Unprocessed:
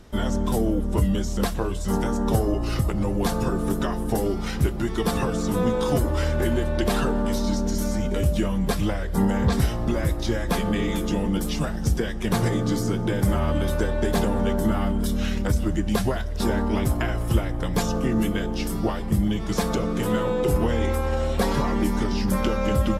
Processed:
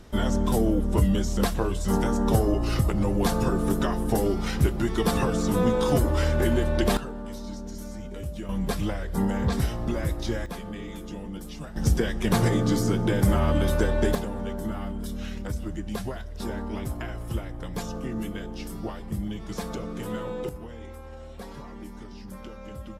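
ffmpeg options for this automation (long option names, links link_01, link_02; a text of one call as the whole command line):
ffmpeg -i in.wav -af "asetnsamples=nb_out_samples=441:pad=0,asendcmd='6.97 volume volume -12.5dB;8.49 volume volume -4dB;10.46 volume volume -12.5dB;11.76 volume volume 0.5dB;14.15 volume volume -9dB;20.49 volume volume -18dB',volume=0dB" out.wav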